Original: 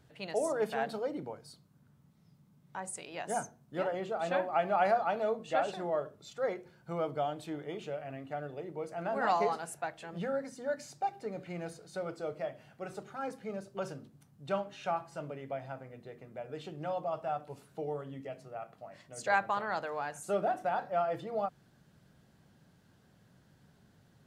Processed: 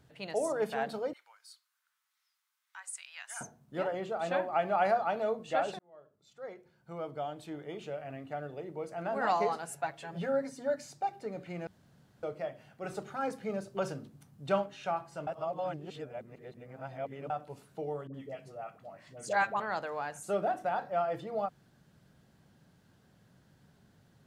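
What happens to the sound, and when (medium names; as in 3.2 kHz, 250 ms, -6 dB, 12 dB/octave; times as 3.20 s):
1.13–3.41 s: high-pass 1.3 kHz 24 dB/octave
5.79–8.08 s: fade in
9.68–10.76 s: comb 7.2 ms, depth 64%
11.67–12.23 s: room tone
12.84–14.66 s: gain +4 dB
15.27–17.30 s: reverse
18.07–19.60 s: phase dispersion highs, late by 69 ms, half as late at 650 Hz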